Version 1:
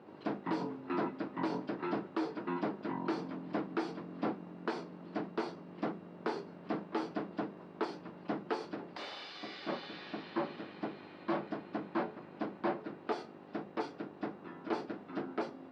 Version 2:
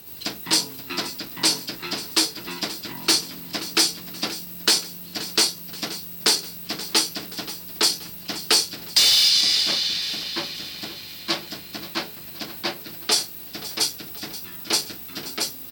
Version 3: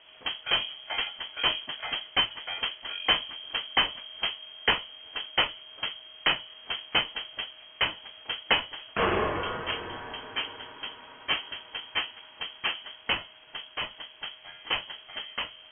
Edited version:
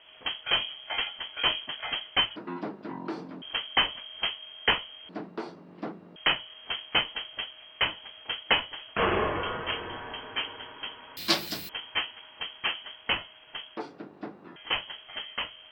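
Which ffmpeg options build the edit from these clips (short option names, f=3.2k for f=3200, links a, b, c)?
-filter_complex "[0:a]asplit=3[a][b][c];[2:a]asplit=5[d][e][f][g][h];[d]atrim=end=2.362[i];[a]atrim=start=2.358:end=3.422[j];[e]atrim=start=3.418:end=5.092[k];[b]atrim=start=5.088:end=6.162[l];[f]atrim=start=6.158:end=11.172[m];[1:a]atrim=start=11.168:end=11.692[n];[g]atrim=start=11.688:end=13.772[o];[c]atrim=start=13.768:end=14.562[p];[h]atrim=start=14.558[q];[i][j]acrossfade=d=0.004:c1=hsin:c2=hsin[r];[r][k]acrossfade=d=0.004:c1=hsin:c2=hsin[s];[s][l]acrossfade=d=0.004:c1=hsin:c2=hsin[t];[t][m]acrossfade=d=0.004:c1=hsin:c2=hsin[u];[u][n]acrossfade=d=0.004:c1=hsin:c2=hsin[v];[v][o]acrossfade=d=0.004:c1=hsin:c2=hsin[w];[w][p]acrossfade=d=0.004:c1=hsin:c2=hsin[x];[x][q]acrossfade=d=0.004:c1=hsin:c2=hsin"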